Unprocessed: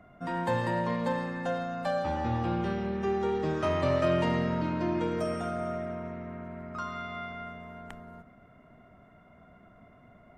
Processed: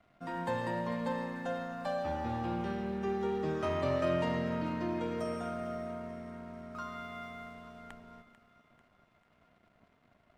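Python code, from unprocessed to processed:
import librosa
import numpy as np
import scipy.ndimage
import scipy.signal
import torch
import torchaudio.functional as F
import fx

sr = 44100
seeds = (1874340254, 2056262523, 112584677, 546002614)

p1 = fx.hum_notches(x, sr, base_hz=60, count=3)
p2 = np.sign(p1) * np.maximum(np.abs(p1) - 10.0 ** (-57.5 / 20.0), 0.0)
p3 = p2 + fx.echo_split(p2, sr, split_hz=830.0, low_ms=133, high_ms=443, feedback_pct=52, wet_db=-13.5, dry=0)
y = p3 * 10.0 ** (-5.0 / 20.0)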